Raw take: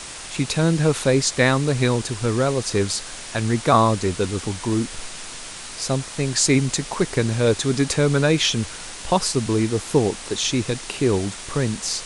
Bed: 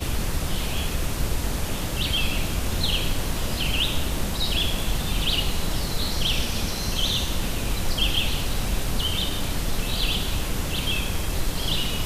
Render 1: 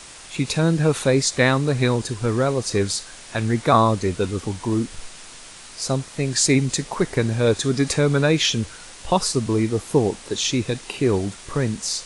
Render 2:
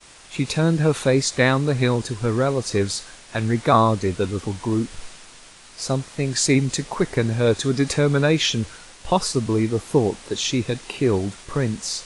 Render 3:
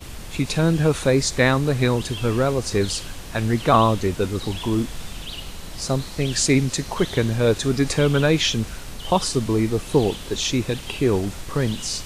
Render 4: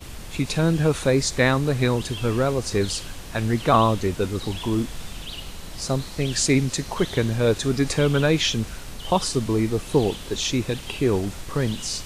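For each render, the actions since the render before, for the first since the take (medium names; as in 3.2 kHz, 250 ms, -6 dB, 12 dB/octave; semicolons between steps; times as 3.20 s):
noise print and reduce 6 dB
expander -37 dBFS; treble shelf 6.5 kHz -4.5 dB
add bed -10.5 dB
trim -1.5 dB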